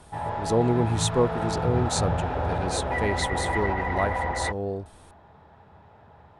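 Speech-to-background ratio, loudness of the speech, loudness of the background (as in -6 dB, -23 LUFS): -0.5 dB, -28.5 LUFS, -28.0 LUFS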